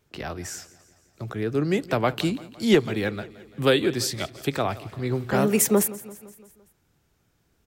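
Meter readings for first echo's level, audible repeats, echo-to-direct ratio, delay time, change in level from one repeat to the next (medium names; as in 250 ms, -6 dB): -19.0 dB, 4, -17.5 dB, 170 ms, -4.5 dB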